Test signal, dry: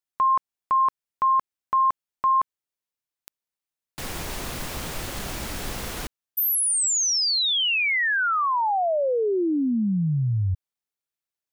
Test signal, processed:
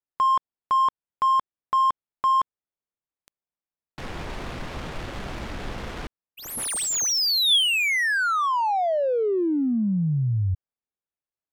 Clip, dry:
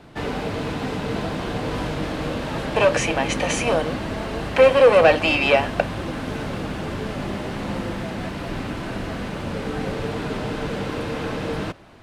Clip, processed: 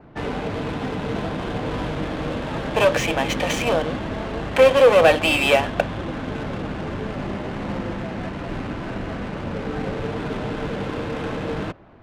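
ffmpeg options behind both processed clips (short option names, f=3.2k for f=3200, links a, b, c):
-af "adynamicsmooth=sensitivity=5.5:basefreq=1.7k,adynamicequalizer=threshold=0.00355:dfrequency=3400:dqfactor=7.6:tfrequency=3400:tqfactor=7.6:attack=5:release=100:ratio=0.375:range=3:mode=boostabove:tftype=bell"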